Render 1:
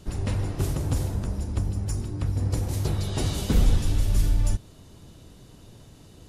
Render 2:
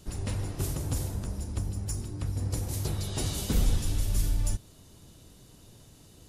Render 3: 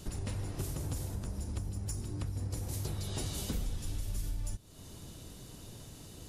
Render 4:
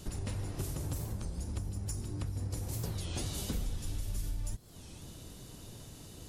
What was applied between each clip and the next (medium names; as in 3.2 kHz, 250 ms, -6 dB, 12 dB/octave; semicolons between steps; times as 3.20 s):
treble shelf 5.1 kHz +9.5 dB; trim -5.5 dB
compression 4:1, threshold -40 dBFS, peak gain reduction 17 dB; trim +4.5 dB
warped record 33 1/3 rpm, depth 250 cents